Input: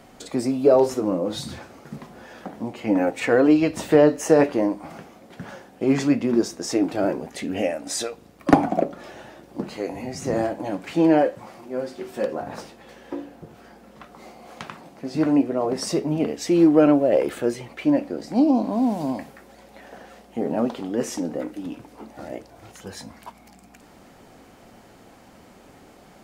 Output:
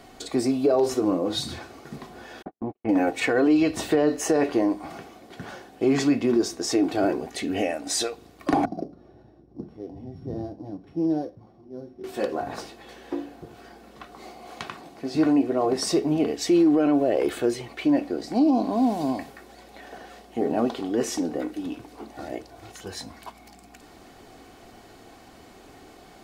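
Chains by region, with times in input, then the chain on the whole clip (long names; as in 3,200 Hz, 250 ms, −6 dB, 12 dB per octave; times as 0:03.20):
0:02.42–0:02.89: noise gate −34 dBFS, range −56 dB + low-pass filter 1,400 Hz
0:08.65–0:12.04: samples sorted by size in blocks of 8 samples + resonant band-pass 100 Hz, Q 0.84
whole clip: parametric band 4,000 Hz +4 dB 0.66 octaves; comb filter 2.7 ms, depth 40%; brickwall limiter −12.5 dBFS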